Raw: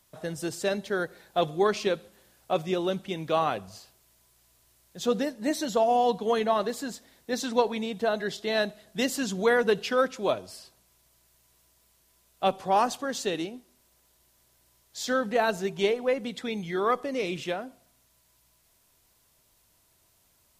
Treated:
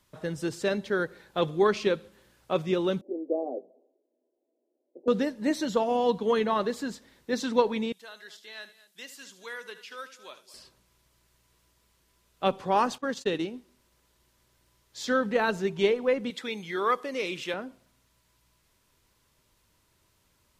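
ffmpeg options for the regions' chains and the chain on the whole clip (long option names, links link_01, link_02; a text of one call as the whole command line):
ffmpeg -i in.wav -filter_complex "[0:a]asettb=1/sr,asplit=3[link_01][link_02][link_03];[link_01]atrim=end=3.014[link_04];[link_02]atrim=start=3.01:end=5.08,asetpts=PTS-STARTPTS,afade=type=in:duration=0.004:curve=qsin,afade=type=out:start_time=2.066:duration=0.004:curve=qsin,asuperpass=centerf=430:order=12:qfactor=0.94,asplit=2[link_05][link_06];[link_06]adelay=12,volume=-7dB[link_07];[link_05][link_07]amix=inputs=2:normalize=0,atrim=end_sample=91287[link_08];[link_03]atrim=start=5.076[link_09];[link_04][link_08]acrossfade=duration=0.004:curve1=hsin:curve2=qsin[link_10];[link_10][link_09]acrossfade=duration=0.004:curve1=qsin:curve2=hsin,asettb=1/sr,asplit=3[link_11][link_12][link_13];[link_11]atrim=end=7.924[link_14];[link_12]atrim=start=7.92:end=10.54,asetpts=PTS-STARTPTS,afade=type=in:duration=0.004:curve=qsin,afade=type=out:start_time=2.616:duration=0.004:curve=qsin,acrossover=split=2700[link_15][link_16];[link_16]acompressor=threshold=-40dB:ratio=4:attack=1:release=60[link_17];[link_15][link_17]amix=inputs=2:normalize=0,aderivative,aecho=1:1:76|223:0.2|0.133,atrim=end_sample=115542[link_18];[link_13]atrim=start=10.536[link_19];[link_14][link_18]acrossfade=duration=0.004:curve1=hsin:curve2=qsin[link_20];[link_20][link_19]acrossfade=duration=0.004:curve1=qsin:curve2=hsin,asettb=1/sr,asplit=3[link_21][link_22][link_23];[link_21]atrim=end=12.984[link_24];[link_22]atrim=start=12.98:end=13.46,asetpts=PTS-STARTPTS,afade=type=in:duration=0.004:curve=qsin,afade=type=out:start_time=0.476:duration=0.004:curve=qsin,agate=range=-55dB:threshold=-35dB:ratio=16:release=100:detection=peak,acompressor=mode=upward:threshold=-36dB:ratio=2.5:attack=3.2:release=140:knee=2.83:detection=peak[link_25];[link_23]atrim=start=13.456[link_26];[link_24][link_25]acrossfade=duration=0.004:curve1=hsin:curve2=qsin[link_27];[link_27][link_26]acrossfade=duration=0.004:curve1=qsin:curve2=hsin,asettb=1/sr,asplit=3[link_28][link_29][link_30];[link_28]atrim=end=16.304[link_31];[link_29]atrim=start=16.3:end=17.54,asetpts=PTS-STARTPTS,afade=type=in:duration=0.004:curve=qsin,afade=type=out:start_time=1.236:duration=0.004:curve=qsin,lowpass=frequency=3200:poles=1,aemphasis=mode=production:type=riaa[link_32];[link_30]atrim=start=17.536[link_33];[link_31][link_32]acrossfade=duration=0.004:curve1=hsin:curve2=qsin[link_34];[link_34][link_33]acrossfade=duration=0.004:curve1=qsin:curve2=hsin,lowpass=frequency=3400:poles=1,equalizer=frequency=700:width_type=o:width=0.28:gain=-10.5,volume=2dB" out.wav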